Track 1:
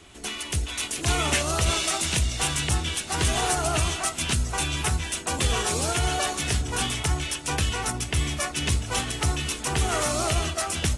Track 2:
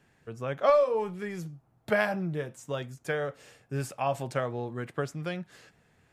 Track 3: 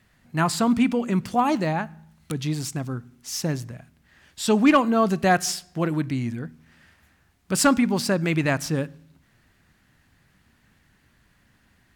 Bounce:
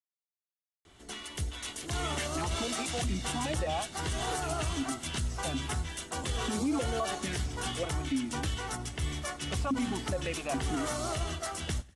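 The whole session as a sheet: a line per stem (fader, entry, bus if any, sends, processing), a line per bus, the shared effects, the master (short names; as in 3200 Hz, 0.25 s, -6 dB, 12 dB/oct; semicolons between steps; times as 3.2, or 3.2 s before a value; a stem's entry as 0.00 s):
-7.5 dB, 0.85 s, no send, echo send -22.5 dB, high shelf 5900 Hz -5 dB; notch 2500 Hz, Q 7.7; wow and flutter 19 cents
off
+2.0 dB, 2.00 s, no send, no echo send, limiter -14 dBFS, peak gain reduction 4.5 dB; vowel sequencer 4.8 Hz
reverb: off
echo: feedback echo 98 ms, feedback 38%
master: limiter -23 dBFS, peak gain reduction 11.5 dB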